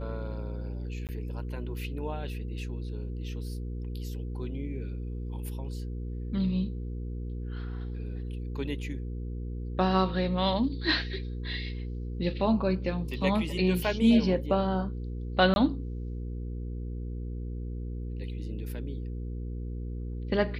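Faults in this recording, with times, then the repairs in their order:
hum 60 Hz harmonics 8 -35 dBFS
1.07–1.09 gap 18 ms
15.54–15.56 gap 21 ms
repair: de-hum 60 Hz, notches 8; interpolate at 1.07, 18 ms; interpolate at 15.54, 21 ms

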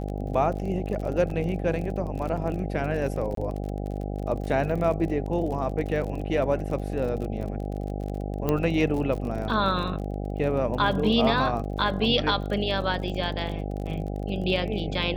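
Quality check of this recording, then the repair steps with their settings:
buzz 50 Hz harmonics 16 -31 dBFS
crackle 39/s -33 dBFS
1.3 gap 3 ms
3.35–3.37 gap 23 ms
8.49 pop -12 dBFS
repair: de-click; de-hum 50 Hz, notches 16; interpolate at 1.3, 3 ms; interpolate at 3.35, 23 ms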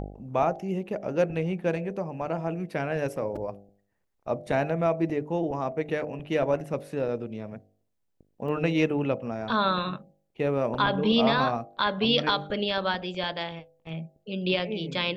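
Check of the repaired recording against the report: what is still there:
8.49 pop

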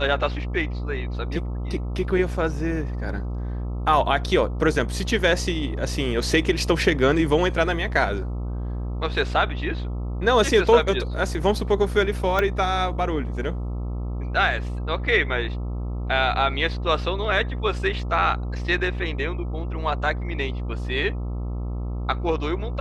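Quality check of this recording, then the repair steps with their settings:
buzz 60 Hz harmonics 22 -28 dBFS
12.39 pop -9 dBFS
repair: de-click; de-hum 60 Hz, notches 22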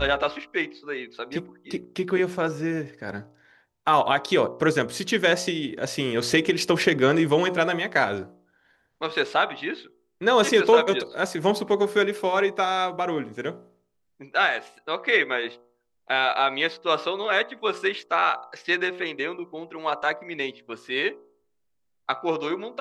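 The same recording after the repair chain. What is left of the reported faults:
12.39 pop

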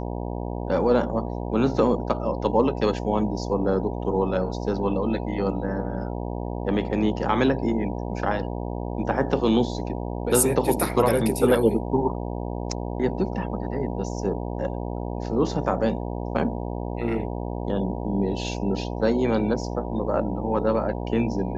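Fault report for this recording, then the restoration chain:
buzz 60 Hz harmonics 16 -30 dBFS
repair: de-hum 60 Hz, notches 16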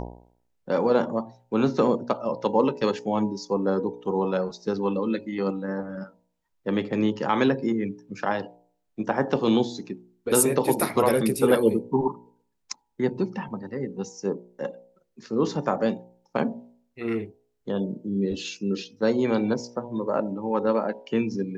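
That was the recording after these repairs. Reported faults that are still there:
none

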